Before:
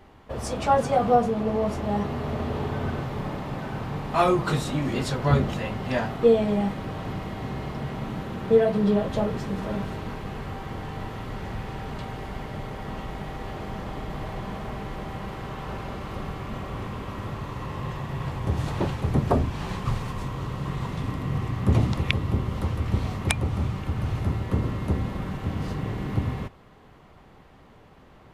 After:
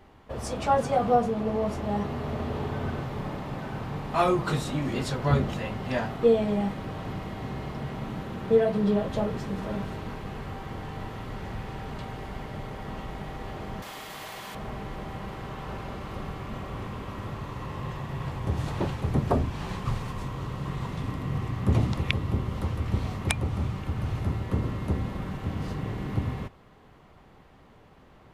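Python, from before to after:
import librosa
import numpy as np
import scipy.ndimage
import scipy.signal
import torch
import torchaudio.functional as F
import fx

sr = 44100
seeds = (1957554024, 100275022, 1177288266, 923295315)

y = fx.tilt_eq(x, sr, slope=4.5, at=(13.82, 14.55))
y = y * librosa.db_to_amplitude(-2.5)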